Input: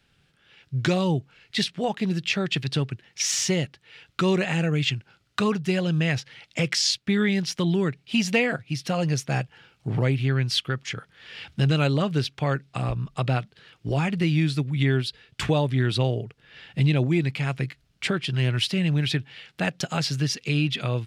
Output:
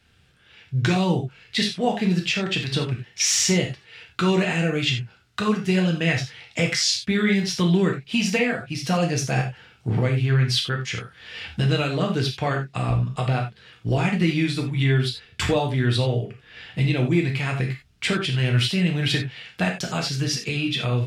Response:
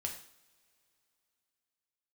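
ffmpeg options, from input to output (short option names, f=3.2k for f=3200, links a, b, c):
-filter_complex "[0:a]alimiter=limit=-14.5dB:level=0:latency=1:release=484[a];[1:a]atrim=start_sample=2205,atrim=end_sample=3528,asetrate=34839,aresample=44100[b];[a][b]afir=irnorm=-1:irlink=0,volume=3.5dB"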